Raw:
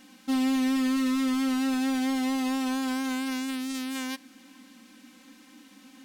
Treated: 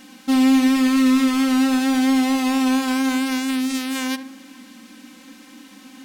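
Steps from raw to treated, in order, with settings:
loose part that buzzes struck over −42 dBFS, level −34 dBFS
tape delay 71 ms, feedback 55%, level −10 dB, low-pass 1,500 Hz
level +8.5 dB

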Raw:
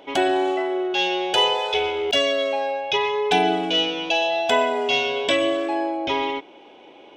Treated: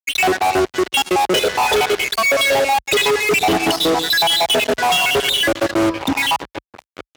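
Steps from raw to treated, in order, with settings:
time-frequency cells dropped at random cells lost 75%
downward compressor 5 to 1, threshold −29 dBFS, peak gain reduction 10.5 dB
0:02.37–0:04.64: high-shelf EQ 3,100 Hz +10.5 dB
0:06.03–0:06.24: healed spectral selection 350–1,300 Hz after
high-frequency loss of the air 190 metres
single-tap delay 76 ms −21.5 dB
convolution reverb, pre-delay 87 ms, DRR 18 dB
fuzz pedal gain 43 dB, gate −46 dBFS
high-pass filter 46 Hz 24 dB per octave

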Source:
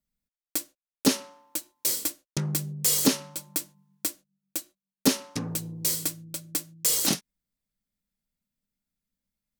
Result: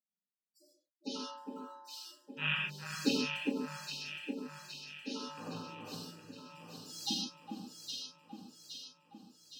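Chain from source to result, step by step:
loose part that buzzes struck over −28 dBFS, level −13 dBFS
high-pass filter 1,200 Hz 6 dB per octave
parametric band 2,200 Hz −15 dB 0.28 octaves
volume swells 122 ms
spectral peaks only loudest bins 64
high-frequency loss of the air 290 metres
delay that swaps between a low-pass and a high-pass 408 ms, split 1,800 Hz, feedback 74%, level −3 dB
reverb whose tail is shaped and stops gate 170 ms flat, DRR −2 dB
level +4.5 dB

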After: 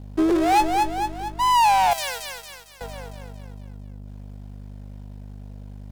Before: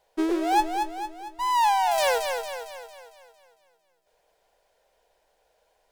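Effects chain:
mains hum 50 Hz, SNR 16 dB
0:01.93–0:02.81: guitar amp tone stack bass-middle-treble 5-5-5
leveller curve on the samples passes 2

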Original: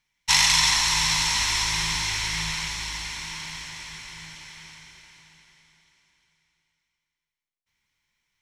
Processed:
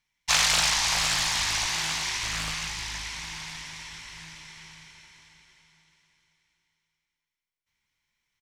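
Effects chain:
0:01.66–0:02.23: high-pass filter 140 Hz 12 dB per octave
single-tap delay 539 ms −11.5 dB
highs frequency-modulated by the lows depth 0.87 ms
level −3 dB

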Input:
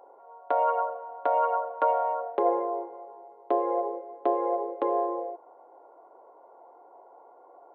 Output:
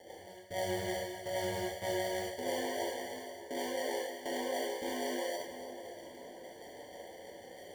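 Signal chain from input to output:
low-pass filter 1,700 Hz 6 dB per octave
reversed playback
downward compressor 6 to 1, threshold −37 dBFS, peak gain reduction 16 dB
reversed playback
sample-rate reduction 1,300 Hz, jitter 0%
rotating-speaker cabinet horn 6.3 Hz
on a send: echo with a time of its own for lows and highs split 1,300 Hz, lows 580 ms, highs 282 ms, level −12 dB
on the sum: reverb whose tail is shaped and stops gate 130 ms flat, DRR −4 dB

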